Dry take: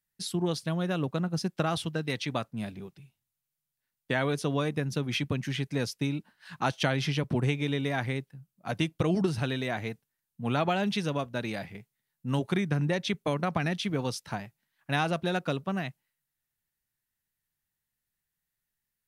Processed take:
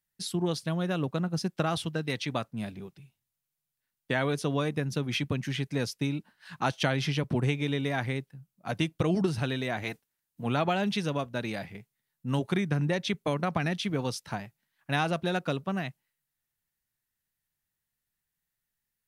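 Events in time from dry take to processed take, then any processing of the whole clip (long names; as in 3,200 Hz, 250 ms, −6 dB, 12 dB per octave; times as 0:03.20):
0:09.82–0:10.44: ceiling on every frequency bin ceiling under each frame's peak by 13 dB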